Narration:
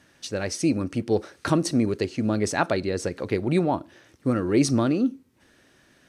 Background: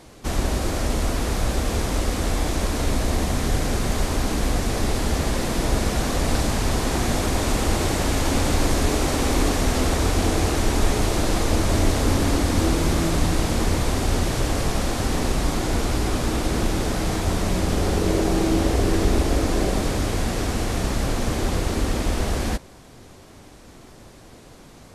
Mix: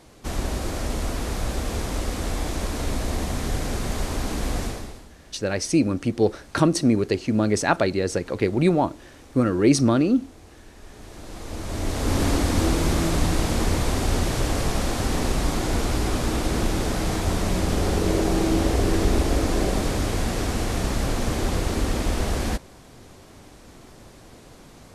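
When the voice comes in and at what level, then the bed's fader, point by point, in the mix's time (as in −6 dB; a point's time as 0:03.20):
5.10 s, +3.0 dB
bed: 0:04.65 −4 dB
0:05.14 −27 dB
0:10.75 −27 dB
0:12.21 −1 dB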